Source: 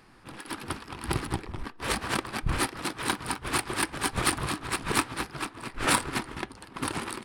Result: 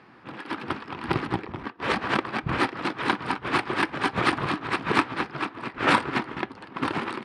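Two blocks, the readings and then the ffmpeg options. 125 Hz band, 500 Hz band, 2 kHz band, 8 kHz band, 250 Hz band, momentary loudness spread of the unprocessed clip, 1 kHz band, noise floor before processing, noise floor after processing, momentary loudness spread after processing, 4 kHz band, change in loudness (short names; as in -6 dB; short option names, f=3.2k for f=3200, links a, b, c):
+1.0 dB, +5.5 dB, +4.5 dB, -15.0 dB, +5.0 dB, 12 LU, +5.5 dB, -51 dBFS, -48 dBFS, 10 LU, 0.0 dB, +3.0 dB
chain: -af "highpass=140,lowpass=2.9k,volume=5.5dB"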